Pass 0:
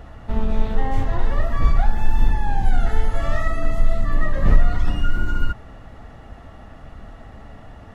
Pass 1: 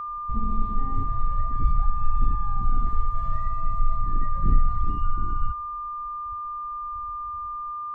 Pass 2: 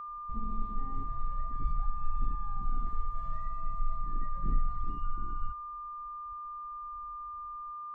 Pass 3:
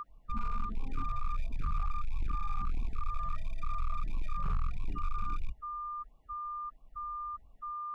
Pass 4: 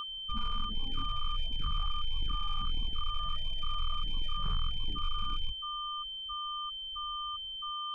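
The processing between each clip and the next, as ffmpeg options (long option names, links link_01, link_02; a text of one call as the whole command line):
ffmpeg -i in.wav -af "afwtdn=0.112,aeval=exprs='val(0)+0.0631*sin(2*PI*1200*n/s)':channel_layout=same,volume=-5.5dB" out.wav
ffmpeg -i in.wav -af "equalizer=frequency=82:width_type=o:width=0.75:gain=-9.5,volume=-9dB" out.wav
ffmpeg -i in.wav -af "asoftclip=type=hard:threshold=-29dB,afftfilt=real='re*(1-between(b*sr/1024,260*pow(1600/260,0.5+0.5*sin(2*PI*1.5*pts/sr))/1.41,260*pow(1600/260,0.5+0.5*sin(2*PI*1.5*pts/sr))*1.41))':imag='im*(1-between(b*sr/1024,260*pow(1600/260,0.5+0.5*sin(2*PI*1.5*pts/sr))/1.41,260*pow(1600/260,0.5+0.5*sin(2*PI*1.5*pts/sr))*1.41))':win_size=1024:overlap=0.75,volume=2.5dB" out.wav
ffmpeg -i in.wav -af "aeval=exprs='val(0)+0.0141*sin(2*PI*3100*n/s)':channel_layout=same,volume=-1dB" out.wav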